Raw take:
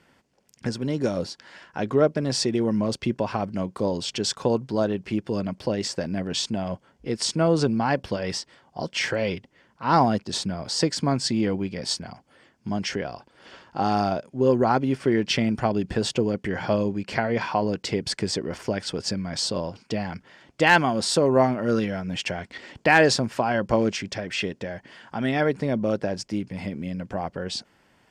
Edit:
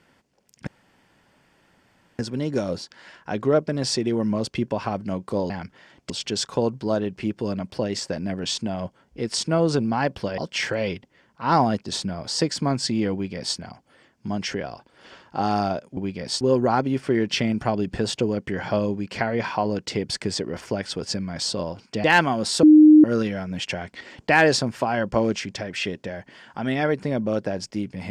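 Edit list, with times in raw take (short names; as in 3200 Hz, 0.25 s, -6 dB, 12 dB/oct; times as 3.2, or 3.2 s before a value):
0.67 insert room tone 1.52 s
8.26–8.79 cut
11.54–11.98 copy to 14.38
20.01–20.61 move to 3.98
21.2–21.61 bleep 306 Hz -7 dBFS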